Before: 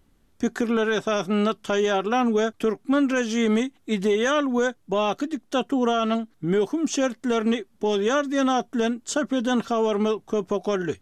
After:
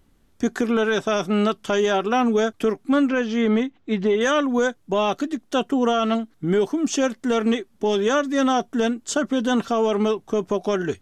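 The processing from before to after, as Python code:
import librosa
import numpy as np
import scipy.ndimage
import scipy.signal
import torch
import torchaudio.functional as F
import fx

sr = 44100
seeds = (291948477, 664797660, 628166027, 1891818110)

y = fx.air_absorb(x, sr, metres=180.0, at=(3.09, 4.21))
y = y * librosa.db_to_amplitude(2.0)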